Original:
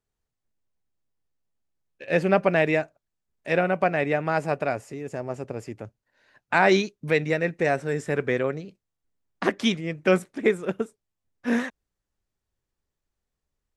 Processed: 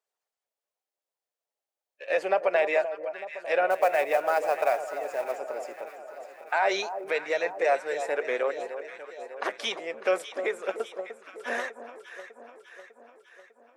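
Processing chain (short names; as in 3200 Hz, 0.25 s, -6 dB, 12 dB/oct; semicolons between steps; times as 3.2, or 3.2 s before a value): bin magnitudes rounded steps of 15 dB; limiter -13.5 dBFS, peak gain reduction 7 dB; ladder high-pass 480 Hz, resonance 35%; 3.7–5.32 companded quantiser 6-bit; echo with dull and thin repeats by turns 0.3 s, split 1100 Hz, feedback 75%, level -9.5 dB; gain +6.5 dB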